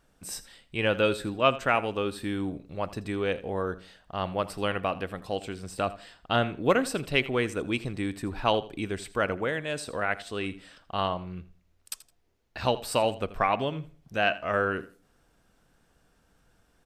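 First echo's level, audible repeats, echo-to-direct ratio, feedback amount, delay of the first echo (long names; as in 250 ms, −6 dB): −17.0 dB, 2, −17.0 dB, 22%, 82 ms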